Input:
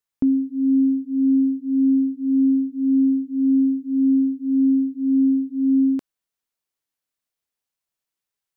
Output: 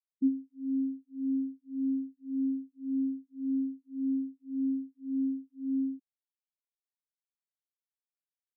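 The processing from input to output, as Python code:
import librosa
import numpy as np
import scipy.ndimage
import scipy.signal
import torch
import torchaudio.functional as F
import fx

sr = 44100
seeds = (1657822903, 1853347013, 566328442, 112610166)

y = fx.noise_reduce_blind(x, sr, reduce_db=9)
y = fx.spectral_expand(y, sr, expansion=2.5)
y = F.gain(torch.from_numpy(y), -3.5).numpy()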